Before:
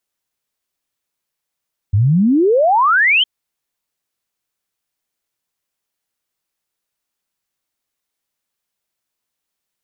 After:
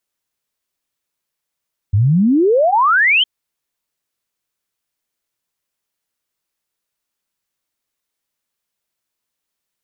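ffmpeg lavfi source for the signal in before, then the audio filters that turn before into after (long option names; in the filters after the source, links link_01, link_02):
-f lavfi -i "aevalsrc='0.335*clip(min(t,1.31-t)/0.01,0,1)*sin(2*PI*93*1.31/log(3200/93)*(exp(log(3200/93)*t/1.31)-1))':duration=1.31:sample_rate=44100"
-af "bandreject=frequency=770:width=20"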